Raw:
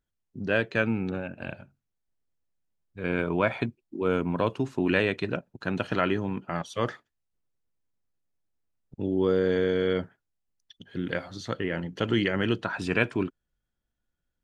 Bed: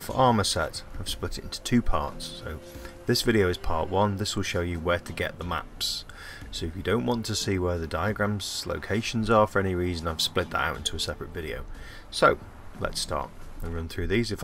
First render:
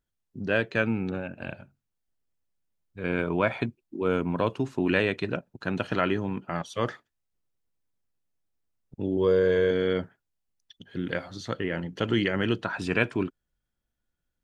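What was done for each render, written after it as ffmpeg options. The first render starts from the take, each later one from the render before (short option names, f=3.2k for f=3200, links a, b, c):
-filter_complex "[0:a]asettb=1/sr,asplit=3[a][b][c];[a]atrim=end=9.174[d];[b]atrim=start=9.17:end=9.71,asetpts=PTS-STARTPTS,afade=t=in:d=0.004:c=qsin,afade=t=out:st=0.536:d=0.004:c=qsin,aecho=1:1:1.9:0.59,atrim=end_sample=23814[e];[c]atrim=start=9.706[f];[d][e]acrossfade=d=0.004:c1=hsin:c2=qsin[g];[g][f]acrossfade=d=0.004:c1=qsin:c2=hsin"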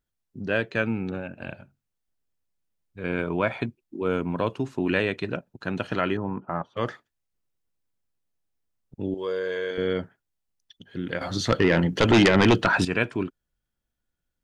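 -filter_complex "[0:a]asettb=1/sr,asplit=3[a][b][c];[a]atrim=end=6.174[d];[b]atrim=start=6.17:end=6.77,asetpts=PTS-STARTPTS,afade=t=in:d=0.004:c=qsin,afade=t=out:st=0.596:d=0.004:c=qsin,lowpass=f=1.1k:t=q:w=1.7[e];[c]atrim=start=6.766[f];[d][e]acrossfade=d=0.004:c1=hsin:c2=qsin[g];[g][f]acrossfade=d=0.004:c1=qsin:c2=hsin,asettb=1/sr,asplit=3[h][i][j];[h]atrim=end=9.144[k];[i]atrim=start=9.14:end=9.78,asetpts=PTS-STARTPTS,afade=t=in:d=0.004:c=qsin,afade=t=out:st=0.636:d=0.004:c=qsin,highpass=f=910:p=1[l];[j]atrim=start=9.776[m];[k][l]acrossfade=d=0.004:c1=hsin:c2=qsin[n];[n][m]acrossfade=d=0.004:c1=qsin:c2=hsin,asettb=1/sr,asplit=3[o][p][q];[o]atrim=end=11.214[r];[p]atrim=start=11.21:end=12.85,asetpts=PTS-STARTPTS,afade=t=in:d=0.004:c=qsin,afade=t=out:st=1.636:d=0.004:c=qsin,aeval=exprs='0.266*sin(PI/2*2.51*val(0)/0.266)':c=same[s];[q]atrim=start=12.846[t];[r][s]acrossfade=d=0.004:c1=hsin:c2=qsin[u];[u][t]acrossfade=d=0.004:c1=qsin:c2=hsin"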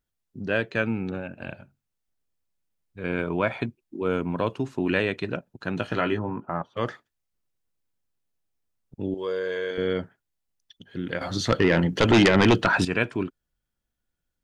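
-filter_complex "[0:a]asettb=1/sr,asplit=3[a][b][c];[a]atrim=end=5.754[d];[b]atrim=start=5.75:end=6.46,asetpts=PTS-STARTPTS,afade=t=in:d=0.004:c=qsin,afade=t=out:st=0.706:d=0.004:c=qsin,asplit=2[e][f];[f]adelay=18,volume=-7.5dB[g];[e][g]amix=inputs=2:normalize=0,atrim=end_sample=31311[h];[c]atrim=start=6.456[i];[d][h]acrossfade=d=0.004:c1=hsin:c2=qsin[j];[j][i]acrossfade=d=0.004:c1=qsin:c2=hsin"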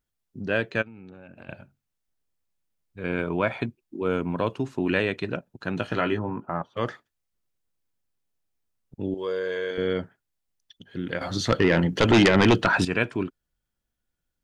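-filter_complex "[0:a]asplit=3[a][b][c];[a]afade=t=out:st=0.81:d=0.02[d];[b]acompressor=threshold=-41dB:ratio=10:attack=3.2:release=140:knee=1:detection=peak,afade=t=in:st=0.81:d=0.02,afade=t=out:st=1.48:d=0.02[e];[c]afade=t=in:st=1.48:d=0.02[f];[d][e][f]amix=inputs=3:normalize=0"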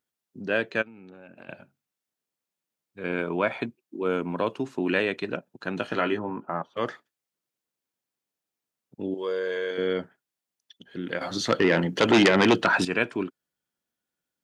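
-af "highpass=200"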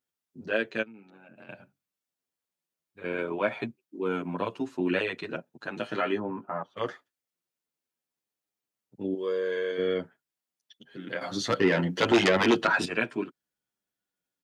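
-filter_complex "[0:a]asoftclip=type=hard:threshold=-9dB,asplit=2[a][b];[b]adelay=8.6,afreqshift=-0.41[c];[a][c]amix=inputs=2:normalize=1"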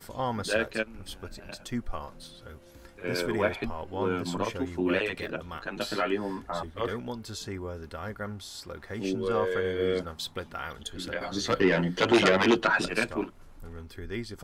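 -filter_complex "[1:a]volume=-10dB[a];[0:a][a]amix=inputs=2:normalize=0"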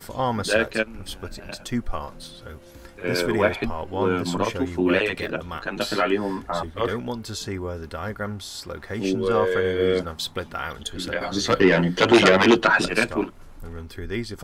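-af "volume=6.5dB"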